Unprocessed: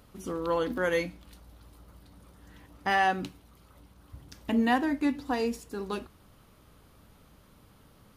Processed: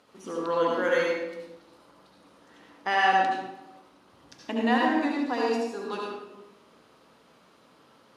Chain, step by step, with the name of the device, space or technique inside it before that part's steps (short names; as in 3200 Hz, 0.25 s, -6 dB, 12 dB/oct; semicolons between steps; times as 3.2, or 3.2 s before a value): supermarket ceiling speaker (BPF 310–6800 Hz; reverb RT60 1.0 s, pre-delay 64 ms, DRR -2.5 dB)